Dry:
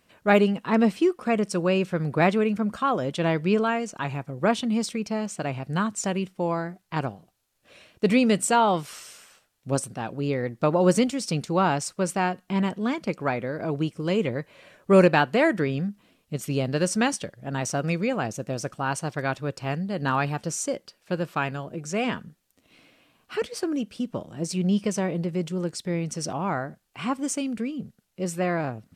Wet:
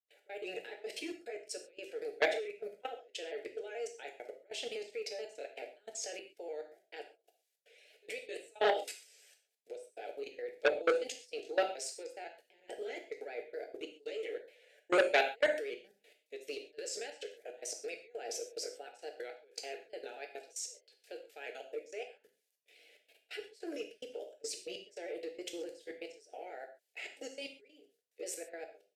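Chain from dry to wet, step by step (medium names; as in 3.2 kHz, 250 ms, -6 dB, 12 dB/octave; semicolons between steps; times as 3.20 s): pitch shift switched off and on -1.5 st, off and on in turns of 144 ms; elliptic high-pass 420 Hz, stop band 80 dB; vibrato 8.5 Hz 36 cents; trance gate ".x..xxx.xxx.x" 143 bpm -24 dB; level held to a coarse grid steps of 22 dB; Butterworth band-stop 1.1 kHz, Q 0.99; gated-style reverb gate 160 ms falling, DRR 2.5 dB; transformer saturation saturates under 1.8 kHz; trim +2.5 dB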